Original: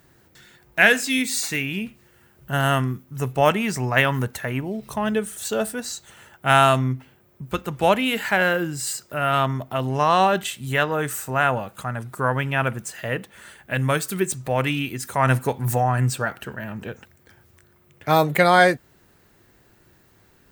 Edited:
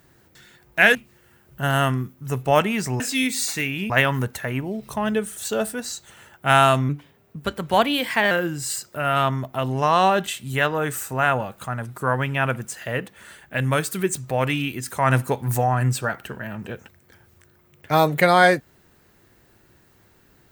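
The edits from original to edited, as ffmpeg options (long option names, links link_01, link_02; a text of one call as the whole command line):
ffmpeg -i in.wav -filter_complex "[0:a]asplit=6[link_01][link_02][link_03][link_04][link_05][link_06];[link_01]atrim=end=0.952[link_07];[link_02]atrim=start=1.848:end=3.902[link_08];[link_03]atrim=start=0.948:end=1.852[link_09];[link_04]atrim=start=3.898:end=6.894[link_10];[link_05]atrim=start=6.89:end=8.48,asetpts=PTS-STARTPTS,asetrate=49392,aresample=44100,atrim=end_sample=62606,asetpts=PTS-STARTPTS[link_11];[link_06]atrim=start=8.476[link_12];[link_07][link_08]acrossfade=duration=0.004:curve1=hsin:curve2=hsin[link_13];[link_13][link_09]acrossfade=duration=0.004:curve1=hsin:curve2=hsin[link_14];[link_14][link_10]acrossfade=duration=0.004:curve1=hsin:curve2=hsin[link_15];[link_15][link_11]acrossfade=duration=0.004:curve1=hsin:curve2=hsin[link_16];[link_16][link_12]acrossfade=duration=0.004:curve1=hsin:curve2=hsin" out.wav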